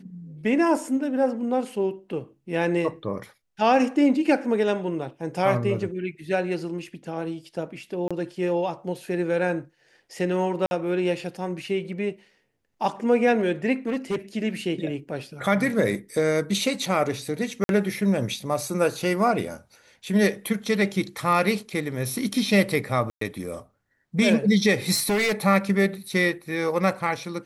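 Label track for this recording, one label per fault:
8.080000	8.110000	drop-out 26 ms
10.660000	10.710000	drop-out 51 ms
13.880000	14.160000	clipping −21 dBFS
17.640000	17.690000	drop-out 52 ms
23.100000	23.210000	drop-out 113 ms
24.940000	25.320000	clipping −19.5 dBFS

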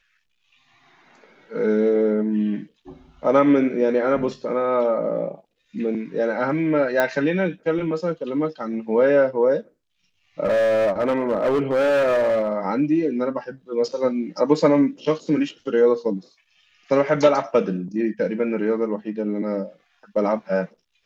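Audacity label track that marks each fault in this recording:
7.000000	7.000000	click −7 dBFS
10.450000	12.580000	clipping −16 dBFS

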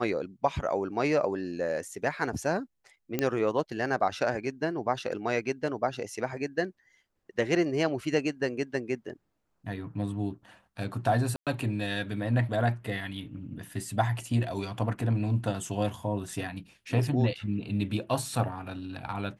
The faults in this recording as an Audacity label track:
3.190000	3.190000	click −13 dBFS
11.360000	11.470000	drop-out 107 ms

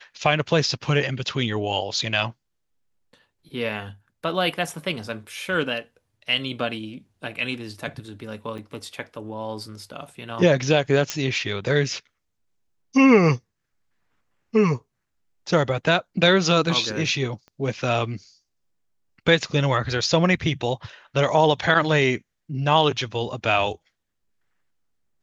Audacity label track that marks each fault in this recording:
8.580000	8.580000	drop-out 4.7 ms
11.100000	11.100000	click −9 dBFS
17.480000	17.480000	click −33 dBFS

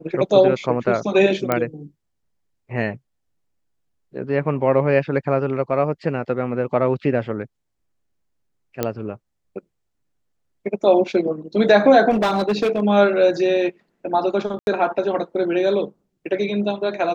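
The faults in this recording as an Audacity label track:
1.520000	1.520000	click −6 dBFS
8.830000	8.830000	click −7 dBFS
12.100000	12.800000	clipping −15 dBFS
14.590000	14.670000	drop-out 81 ms

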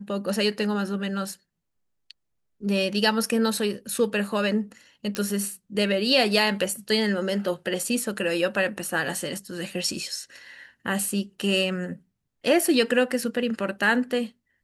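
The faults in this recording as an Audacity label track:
5.150000	5.150000	click −13 dBFS

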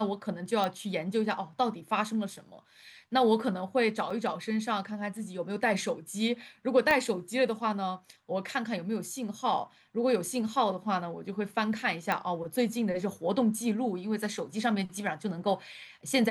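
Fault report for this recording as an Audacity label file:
0.640000	0.640000	click −18 dBFS
4.100000	4.100000	drop-out 4.4 ms
6.910000	6.910000	click −13 dBFS
12.120000	12.120000	click −15 dBFS

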